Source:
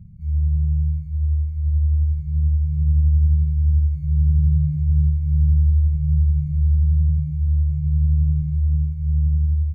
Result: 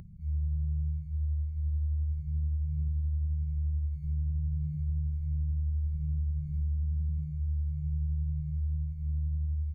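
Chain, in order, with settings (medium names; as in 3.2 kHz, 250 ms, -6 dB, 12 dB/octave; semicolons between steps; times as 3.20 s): upward compressor, threshold -34 dBFS; peaking EQ 110 Hz -3.5 dB 0.57 oct, from 2.88 s -12 dB; compression, threshold -20 dBFS, peak gain reduction 5.5 dB; trim -7.5 dB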